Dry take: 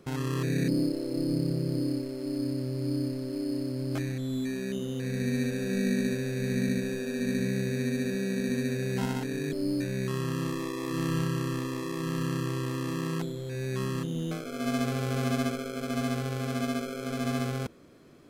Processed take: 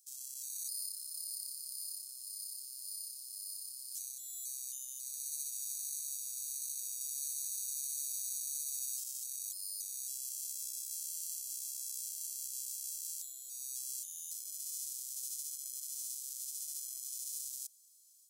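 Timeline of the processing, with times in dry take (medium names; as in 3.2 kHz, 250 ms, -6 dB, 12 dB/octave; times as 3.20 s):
7.01–9.04 s: gain +9 dB
whole clip: inverse Chebyshev high-pass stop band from 1.6 kHz, stop band 70 dB; peak limiter -38 dBFS; level rider gain up to 4.5 dB; trim +8 dB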